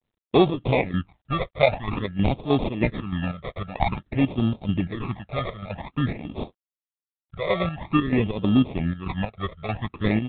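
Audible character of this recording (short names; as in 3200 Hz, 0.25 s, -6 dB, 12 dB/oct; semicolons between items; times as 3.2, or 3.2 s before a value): chopped level 3.2 Hz, depth 60%, duty 60%; aliases and images of a low sample rate 1500 Hz, jitter 0%; phasing stages 12, 0.5 Hz, lowest notch 270–1900 Hz; G.726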